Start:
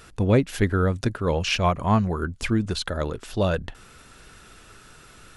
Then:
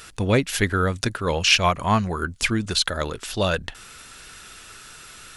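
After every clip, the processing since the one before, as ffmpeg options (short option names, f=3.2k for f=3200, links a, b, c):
-af "tiltshelf=f=1.2k:g=-6,volume=4dB"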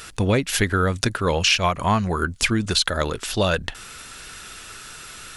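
-af "acompressor=threshold=-20dB:ratio=4,volume=4dB"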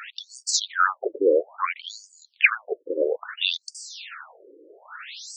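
-af "afftfilt=real='re*between(b*sr/1024,380*pow(6500/380,0.5+0.5*sin(2*PI*0.6*pts/sr))/1.41,380*pow(6500/380,0.5+0.5*sin(2*PI*0.6*pts/sr))*1.41)':imag='im*between(b*sr/1024,380*pow(6500/380,0.5+0.5*sin(2*PI*0.6*pts/sr))/1.41,380*pow(6500/380,0.5+0.5*sin(2*PI*0.6*pts/sr))*1.41)':win_size=1024:overlap=0.75,volume=6.5dB"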